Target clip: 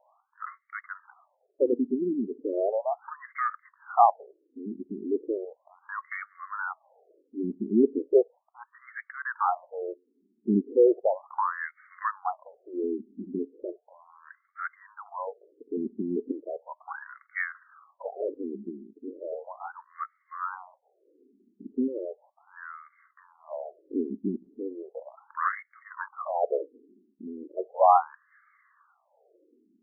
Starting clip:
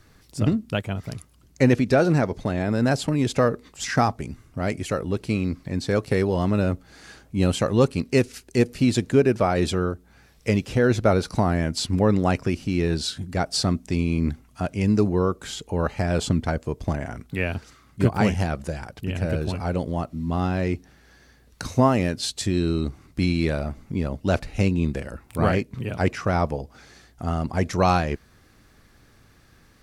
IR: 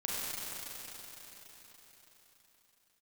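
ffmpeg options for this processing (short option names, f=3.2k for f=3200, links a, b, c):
-af "aphaser=in_gain=1:out_gain=1:delay=1:decay=0.49:speed=0.75:type=sinusoidal,asubboost=boost=6.5:cutoff=83,afftfilt=real='re*between(b*sr/1024,280*pow(1600/280,0.5+0.5*sin(2*PI*0.36*pts/sr))/1.41,280*pow(1600/280,0.5+0.5*sin(2*PI*0.36*pts/sr))*1.41)':imag='im*between(b*sr/1024,280*pow(1600/280,0.5+0.5*sin(2*PI*0.36*pts/sr))/1.41,280*pow(1600/280,0.5+0.5*sin(2*PI*0.36*pts/sr))*1.41)':win_size=1024:overlap=0.75"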